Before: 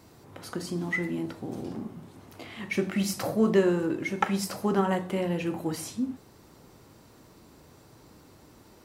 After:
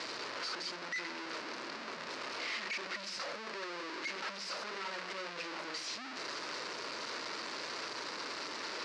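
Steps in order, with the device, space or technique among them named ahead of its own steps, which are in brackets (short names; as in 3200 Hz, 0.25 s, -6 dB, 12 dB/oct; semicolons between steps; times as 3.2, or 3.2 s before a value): home computer beeper (infinite clipping; speaker cabinet 640–5100 Hz, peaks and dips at 770 Hz -10 dB, 3300 Hz -5 dB, 4700 Hz +4 dB); gain -4 dB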